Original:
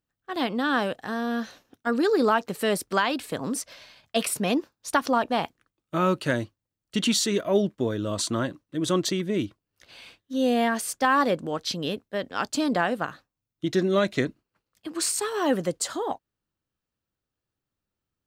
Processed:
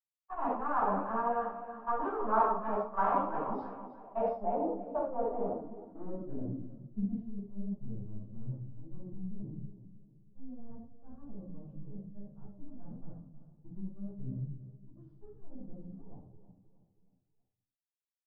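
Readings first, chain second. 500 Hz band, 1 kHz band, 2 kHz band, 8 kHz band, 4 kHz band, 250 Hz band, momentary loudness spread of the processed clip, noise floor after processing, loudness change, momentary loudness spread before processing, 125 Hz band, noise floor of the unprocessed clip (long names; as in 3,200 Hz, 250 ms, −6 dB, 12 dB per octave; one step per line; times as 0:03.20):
−11.0 dB, −5.5 dB, −19.0 dB, below −40 dB, below −40 dB, −13.5 dB, 20 LU, below −85 dBFS, −9.5 dB, 10 LU, −8.5 dB, below −85 dBFS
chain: hearing-aid frequency compression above 1,600 Hz 1.5 to 1
power curve on the samples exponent 2
rectangular room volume 490 cubic metres, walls furnished, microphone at 9.3 metres
reversed playback
downward compressor 8 to 1, threshold −28 dBFS, peak gain reduction 21 dB
reversed playback
noise gate −54 dBFS, range −14 dB
parametric band 770 Hz +10.5 dB 1.6 octaves
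on a send: repeating echo 318 ms, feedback 44%, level −12.5 dB
on the sum: low-pass filter sweep 1,100 Hz → 140 Hz, 0:03.69–0:07.61
string-ensemble chorus
level −6 dB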